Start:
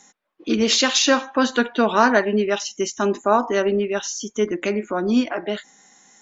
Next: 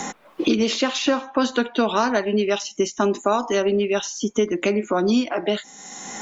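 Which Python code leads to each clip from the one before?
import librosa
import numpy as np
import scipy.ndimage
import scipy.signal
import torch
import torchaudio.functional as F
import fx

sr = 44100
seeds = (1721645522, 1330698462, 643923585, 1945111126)

y = fx.peak_eq(x, sr, hz=1700.0, db=-5.5, octaves=0.52)
y = fx.band_squash(y, sr, depth_pct=100)
y = F.gain(torch.from_numpy(y), -1.0).numpy()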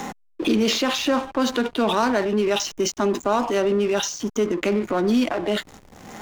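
y = fx.transient(x, sr, attack_db=-3, sustain_db=7)
y = fx.backlash(y, sr, play_db=-26.0)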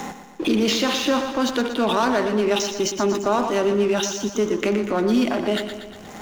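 y = fx.echo_feedback(x, sr, ms=119, feedback_pct=58, wet_db=-9)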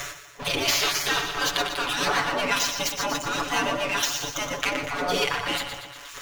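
y = scipy.signal.medfilt(x, 5)
y = fx.spec_gate(y, sr, threshold_db=-15, keep='weak')
y = y + 0.86 * np.pad(y, (int(7.0 * sr / 1000.0), 0))[:len(y)]
y = F.gain(torch.from_numpy(y), 4.0).numpy()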